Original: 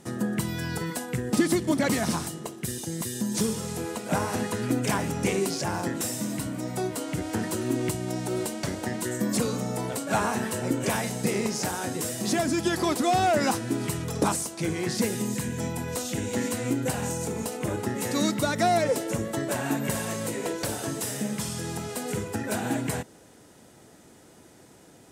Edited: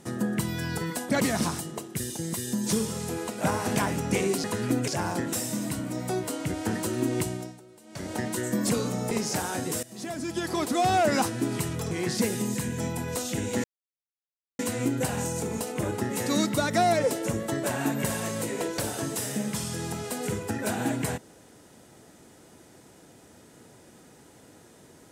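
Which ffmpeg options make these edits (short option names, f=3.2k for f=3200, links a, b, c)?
-filter_complex "[0:a]asplit=11[a][b][c][d][e][f][g][h][i][j][k];[a]atrim=end=1.092[l];[b]atrim=start=1.768:end=4.442[m];[c]atrim=start=4.878:end=5.562[n];[d]atrim=start=4.438:end=4.882[o];[e]atrim=start=5.558:end=8.35,asetpts=PTS-STARTPTS,afade=t=out:st=2.432:d=0.36:c=qua:silence=0.0668344[p];[f]atrim=start=8.35:end=8.44,asetpts=PTS-STARTPTS,volume=-23.5dB[q];[g]atrim=start=8.44:end=9.792,asetpts=PTS-STARTPTS,afade=t=in:d=0.36:c=qua:silence=0.0668344[r];[h]atrim=start=11.398:end=12.12,asetpts=PTS-STARTPTS,afade=t=out:st=0.718:d=0.004:c=hsin:silence=0.125893[s];[i]atrim=start=12.12:end=14.202,asetpts=PTS-STARTPTS,afade=t=in:d=1.12:silence=0.125893[t];[j]atrim=start=14.708:end=16.44,asetpts=PTS-STARTPTS,afade=t=out:st=1.728:d=0.004:c=hsin,apad=pad_dur=0.95[u];[k]atrim=start=16.44,asetpts=PTS-STARTPTS,afade=t=in:d=0.004:c=hsin[v];[l][m]acrossfade=d=0.004:c1=hsin:c2=hsin[w];[w][n]acrossfade=d=0.004:c1=hsin:c2=hsin[x];[x][o]acrossfade=d=0.004:c1=hsin:c2=hsin[y];[p][q][r]concat=n=3:v=0:a=1[z];[y][z]acrossfade=d=0.004:c1=hsin:c2=hsin[aa];[s][t]concat=n=2:v=0:a=1[ab];[aa][ab]acrossfade=d=0.004:c1=hsin:c2=hsin[ac];[u][v]concat=n=2:v=0:a=1[ad];[ac][ad]acrossfade=d=0.004:c1=hsin:c2=hsin"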